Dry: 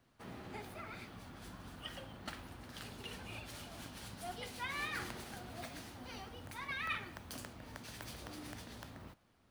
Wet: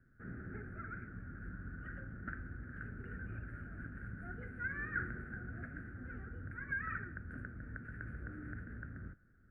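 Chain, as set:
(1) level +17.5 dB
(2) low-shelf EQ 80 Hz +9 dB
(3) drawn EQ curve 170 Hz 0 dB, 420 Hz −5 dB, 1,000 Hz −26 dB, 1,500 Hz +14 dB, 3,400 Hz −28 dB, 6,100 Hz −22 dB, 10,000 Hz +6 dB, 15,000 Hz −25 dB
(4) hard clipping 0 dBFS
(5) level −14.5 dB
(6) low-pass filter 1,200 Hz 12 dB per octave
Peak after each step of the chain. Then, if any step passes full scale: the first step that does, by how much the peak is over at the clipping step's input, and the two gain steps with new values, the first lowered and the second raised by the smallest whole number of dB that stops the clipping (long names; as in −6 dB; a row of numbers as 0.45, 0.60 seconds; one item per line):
−8.0, −8.0, −5.5, −5.5, −20.0, −26.0 dBFS
no step passes full scale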